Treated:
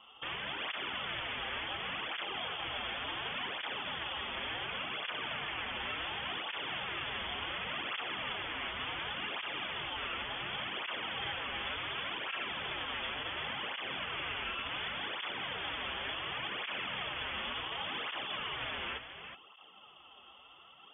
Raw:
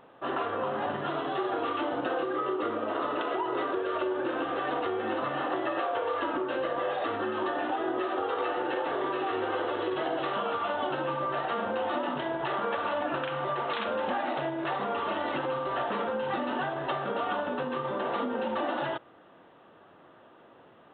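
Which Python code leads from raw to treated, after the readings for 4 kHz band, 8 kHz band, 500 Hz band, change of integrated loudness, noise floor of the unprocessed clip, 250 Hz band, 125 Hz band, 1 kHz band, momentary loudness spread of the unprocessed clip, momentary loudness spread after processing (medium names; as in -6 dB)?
+6.5 dB, no reading, -17.0 dB, -6.0 dB, -56 dBFS, -16.0 dB, -6.5 dB, -11.0 dB, 1 LU, 2 LU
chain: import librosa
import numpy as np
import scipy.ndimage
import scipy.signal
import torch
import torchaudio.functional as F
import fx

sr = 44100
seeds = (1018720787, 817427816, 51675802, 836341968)

p1 = fx.tracing_dist(x, sr, depth_ms=0.29)
p2 = scipy.signal.sosfilt(scipy.signal.butter(16, 630.0, 'highpass', fs=sr, output='sos'), p1)
p3 = fx.over_compress(p2, sr, threshold_db=-35.0, ratio=-0.5)
p4 = p2 + (p3 * 10.0 ** (1.0 / 20.0))
p5 = (np.mod(10.0 ** (25.0 / 20.0) * p4 + 1.0, 2.0) - 1.0) / 10.0 ** (25.0 / 20.0)
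p6 = p5 * np.sin(2.0 * np.pi * 1400.0 * np.arange(len(p5)) / sr)
p7 = fx.air_absorb(p6, sr, metres=140.0)
p8 = fx.doubler(p7, sr, ms=15.0, db=-13.5)
p9 = p8 + fx.echo_single(p8, sr, ms=372, db=-9.0, dry=0)
p10 = fx.freq_invert(p9, sr, carrier_hz=3400)
y = fx.flanger_cancel(p10, sr, hz=0.69, depth_ms=7.1)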